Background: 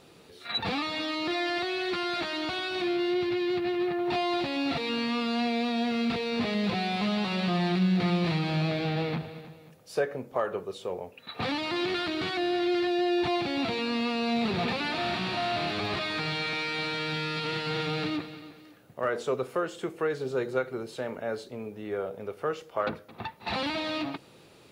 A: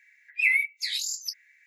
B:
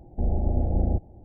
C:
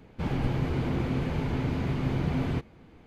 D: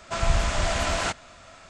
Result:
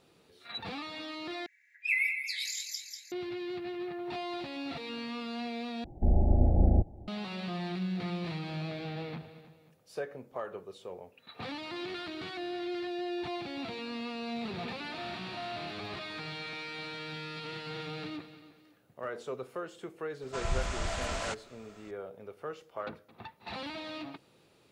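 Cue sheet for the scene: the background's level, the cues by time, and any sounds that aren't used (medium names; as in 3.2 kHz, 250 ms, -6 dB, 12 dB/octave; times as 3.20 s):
background -9.5 dB
1.46 s: replace with A -7 dB + two-band feedback delay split 2.5 kHz, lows 122 ms, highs 192 ms, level -6 dB
5.84 s: replace with B + band-stop 490 Hz, Q 16
20.22 s: add D -9.5 dB
not used: C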